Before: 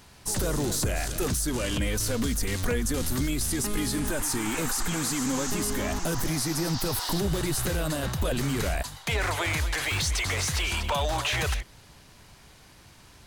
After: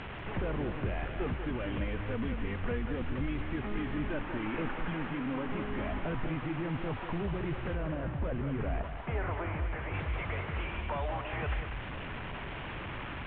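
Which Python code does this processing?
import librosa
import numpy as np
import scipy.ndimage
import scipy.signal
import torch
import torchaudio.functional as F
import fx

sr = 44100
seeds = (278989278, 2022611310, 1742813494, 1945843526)

y = fx.delta_mod(x, sr, bps=16000, step_db=-32.5)
y = fx.high_shelf(y, sr, hz=2300.0, db=-11.0, at=(7.75, 9.94))
y = fx.rider(y, sr, range_db=5, speed_s=0.5)
y = fx.air_absorb(y, sr, metres=130.0)
y = y + 10.0 ** (-8.5 / 20.0) * np.pad(y, (int(191 * sr / 1000.0), 0))[:len(y)]
y = y * 10.0 ** (-5.5 / 20.0)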